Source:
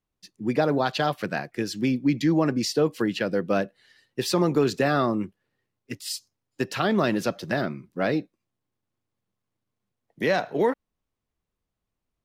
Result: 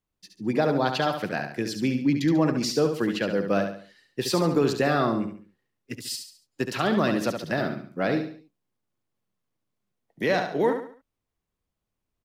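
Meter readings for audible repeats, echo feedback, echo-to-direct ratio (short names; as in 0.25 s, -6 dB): 4, 38%, -6.5 dB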